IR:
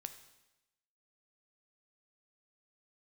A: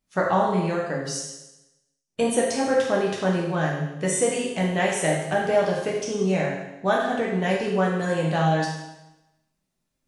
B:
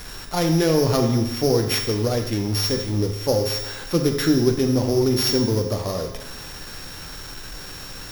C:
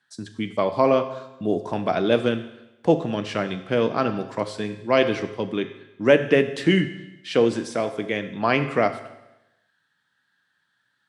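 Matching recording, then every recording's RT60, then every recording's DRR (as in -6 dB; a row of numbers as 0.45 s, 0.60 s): C; 0.95 s, 0.95 s, 0.95 s; -4.0 dB, 3.5 dB, 8.5 dB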